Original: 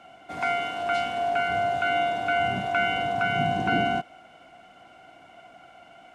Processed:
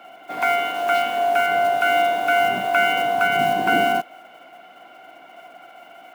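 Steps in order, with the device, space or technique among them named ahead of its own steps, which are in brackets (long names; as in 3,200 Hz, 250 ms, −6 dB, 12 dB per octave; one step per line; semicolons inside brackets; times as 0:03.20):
early digital voice recorder (band-pass filter 290–3,900 Hz; one scale factor per block 5 bits)
level +6.5 dB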